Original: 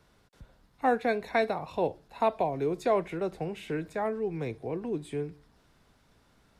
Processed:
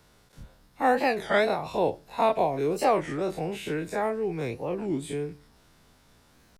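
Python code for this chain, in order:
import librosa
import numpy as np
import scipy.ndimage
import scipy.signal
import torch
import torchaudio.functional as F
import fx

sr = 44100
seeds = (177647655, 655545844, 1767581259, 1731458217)

y = fx.spec_dilate(x, sr, span_ms=60)
y = fx.high_shelf(y, sr, hz=5100.0, db=7.0)
y = fx.record_warp(y, sr, rpm=33.33, depth_cents=250.0)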